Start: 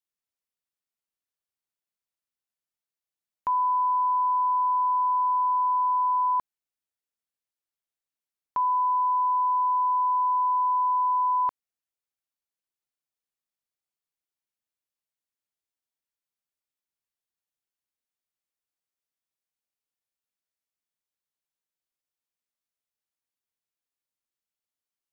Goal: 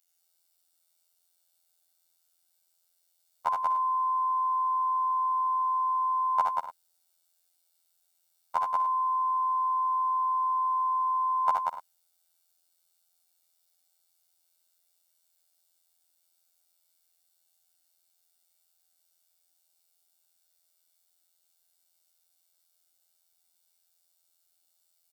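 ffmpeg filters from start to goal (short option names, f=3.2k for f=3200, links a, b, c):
-af "bass=f=250:g=-14,treble=f=4k:g=10,aecho=1:1:1.4:0.81,afftfilt=real='hypot(re,im)*cos(PI*b)':imag='0':win_size=2048:overlap=0.75,adynamicequalizer=threshold=0.00158:dfrequency=950:dqfactor=1.9:tfrequency=950:tqfactor=1.9:attack=5:release=100:ratio=0.375:range=2.5:mode=boostabove:tftype=bell,aecho=1:1:66|75|94|186|247|290:0.355|0.668|0.106|0.668|0.168|0.168,volume=9dB"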